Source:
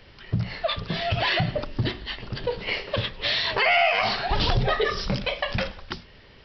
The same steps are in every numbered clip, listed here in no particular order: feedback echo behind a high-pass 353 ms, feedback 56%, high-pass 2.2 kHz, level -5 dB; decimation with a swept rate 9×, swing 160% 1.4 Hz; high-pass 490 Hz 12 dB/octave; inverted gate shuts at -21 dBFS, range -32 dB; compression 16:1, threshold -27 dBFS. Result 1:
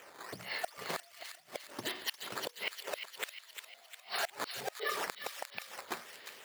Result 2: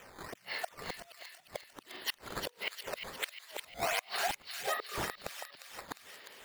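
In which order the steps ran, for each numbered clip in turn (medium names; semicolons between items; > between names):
decimation with a swept rate > compression > high-pass > inverted gate > feedback echo behind a high-pass; compression > inverted gate > high-pass > decimation with a swept rate > feedback echo behind a high-pass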